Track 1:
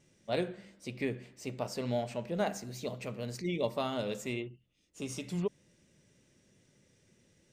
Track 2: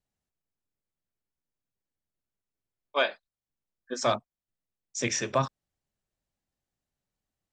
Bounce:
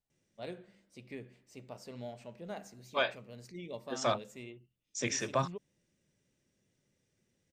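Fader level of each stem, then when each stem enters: −11.0, −5.0 decibels; 0.10, 0.00 seconds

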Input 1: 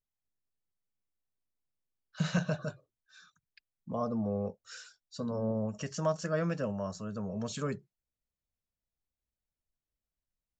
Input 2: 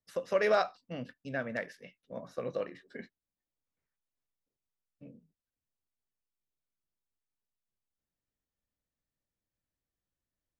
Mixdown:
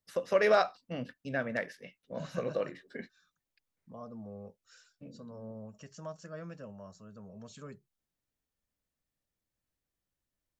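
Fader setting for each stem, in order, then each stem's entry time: −12.5, +2.0 decibels; 0.00, 0.00 seconds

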